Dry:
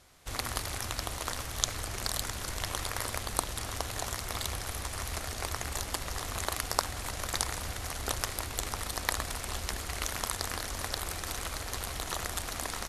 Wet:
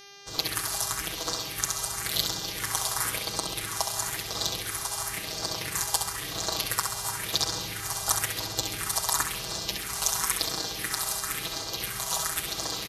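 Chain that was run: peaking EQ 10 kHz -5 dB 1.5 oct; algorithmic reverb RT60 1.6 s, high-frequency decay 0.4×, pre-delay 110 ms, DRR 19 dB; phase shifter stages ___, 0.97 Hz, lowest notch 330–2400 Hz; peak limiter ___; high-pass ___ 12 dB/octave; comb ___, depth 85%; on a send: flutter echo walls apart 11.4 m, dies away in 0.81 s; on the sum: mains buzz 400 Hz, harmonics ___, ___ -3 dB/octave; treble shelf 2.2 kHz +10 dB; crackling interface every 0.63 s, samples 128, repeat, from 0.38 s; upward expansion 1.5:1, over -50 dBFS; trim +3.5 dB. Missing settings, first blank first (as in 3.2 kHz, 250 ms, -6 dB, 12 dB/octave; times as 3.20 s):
4, -17 dBFS, 86 Hz, 6.2 ms, 16, -48 dBFS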